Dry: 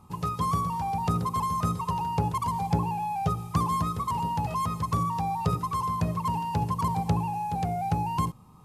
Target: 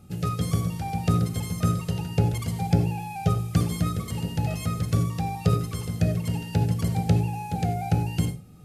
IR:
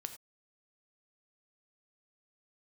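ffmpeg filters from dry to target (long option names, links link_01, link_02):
-filter_complex "[0:a]asuperstop=centerf=1000:order=4:qfactor=1.5[link_01];[1:a]atrim=start_sample=2205[link_02];[link_01][link_02]afir=irnorm=-1:irlink=0,volume=7.5dB"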